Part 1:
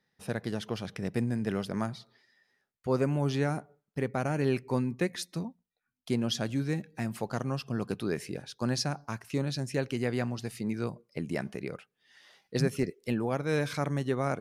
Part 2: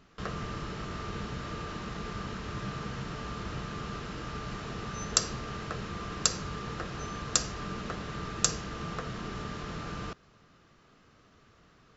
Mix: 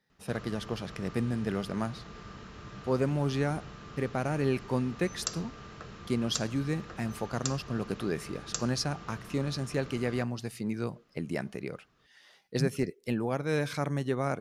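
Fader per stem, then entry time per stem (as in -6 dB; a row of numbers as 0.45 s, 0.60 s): -0.5 dB, -8.5 dB; 0.00 s, 0.10 s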